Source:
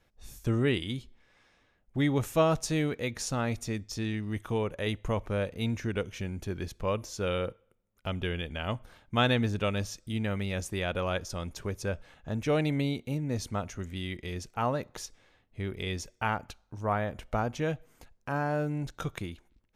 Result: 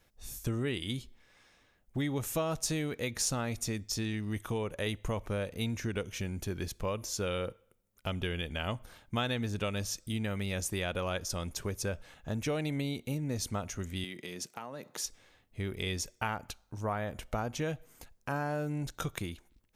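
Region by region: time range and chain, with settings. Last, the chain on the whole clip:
14.04–15.04 s: high-pass 150 Hz 24 dB/octave + compression 16:1, threshold -37 dBFS
whole clip: compression 4:1, threshold -30 dBFS; treble shelf 5.6 kHz +10 dB; de-esser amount 45%

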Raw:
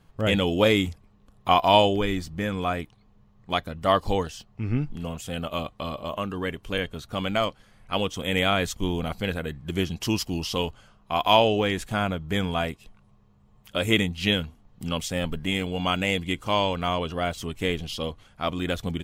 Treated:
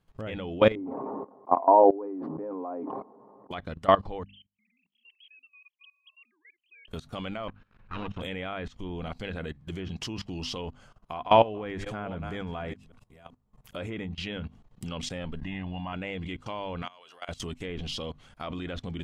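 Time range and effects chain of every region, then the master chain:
0.75–3.51 s: Chebyshev band-pass 270–990 Hz, order 3 + comb 7.5 ms, depth 32% + decay stretcher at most 33 dB/s
4.23–6.88 s: formants replaced by sine waves + inverse Chebyshev high-pass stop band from 1.5 kHz
7.48–8.21 s: comb filter that takes the minimum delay 0.75 ms + low-pass 2.3 kHz
10.61–14.08 s: chunks repeated in reverse 385 ms, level -13.5 dB + peaking EQ 3.3 kHz -4.5 dB 1.4 oct
15.41–15.93 s: block-companded coder 7-bit + distance through air 130 m + comb 1.1 ms, depth 81%
16.82–17.29 s: high-pass 830 Hz + compression 3:1, threshold -37 dBFS
whole clip: hum notches 50/100/150/200/250 Hz; low-pass that closes with the level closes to 2.3 kHz, closed at -21.5 dBFS; level held to a coarse grid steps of 19 dB; trim +3 dB

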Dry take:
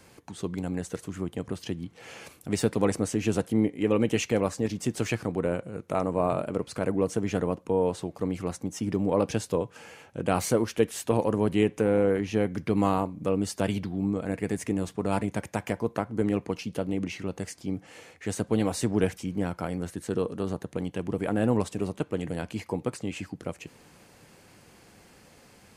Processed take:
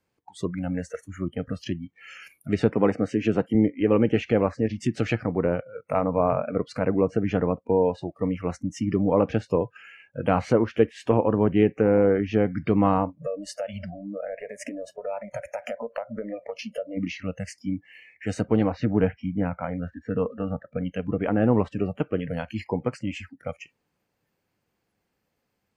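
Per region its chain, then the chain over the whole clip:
2.70–3.55 s: high-pass 120 Hz + treble shelf 10 kHz +5 dB
13.17–16.97 s: peaking EQ 590 Hz +13.5 dB 0.48 oct + compression 5:1, threshold -30 dBFS
18.63–20.86 s: distance through air 160 m + band-stop 370 Hz, Q 8.2
whole clip: spectral noise reduction 26 dB; low-pass that closes with the level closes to 2.2 kHz, closed at -22.5 dBFS; treble shelf 7.6 kHz -10 dB; trim +4 dB

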